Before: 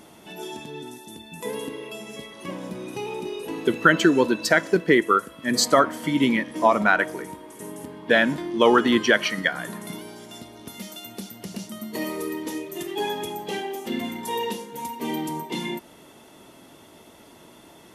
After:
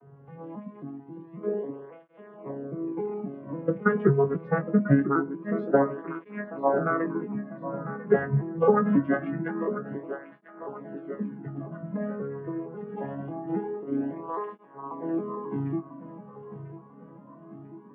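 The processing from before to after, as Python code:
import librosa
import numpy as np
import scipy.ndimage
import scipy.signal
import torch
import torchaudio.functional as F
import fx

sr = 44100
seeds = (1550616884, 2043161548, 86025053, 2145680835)

y = fx.vocoder_arp(x, sr, chord='minor triad', root=49, every_ms=271)
y = scipy.signal.sosfilt(scipy.signal.butter(4, 1500.0, 'lowpass', fs=sr, output='sos'), y)
y = fx.doubler(y, sr, ms=21.0, db=-7.5)
y = fx.echo_feedback(y, sr, ms=995, feedback_pct=54, wet_db=-12)
y = fx.flanger_cancel(y, sr, hz=0.24, depth_ms=3.6)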